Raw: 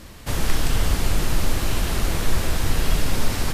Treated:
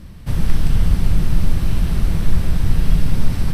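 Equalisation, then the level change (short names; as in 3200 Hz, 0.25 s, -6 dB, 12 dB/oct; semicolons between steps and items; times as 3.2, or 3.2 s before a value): tone controls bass +12 dB, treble -2 dB; bell 170 Hz +6.5 dB 0.51 oct; notch 6900 Hz, Q 6.9; -6.0 dB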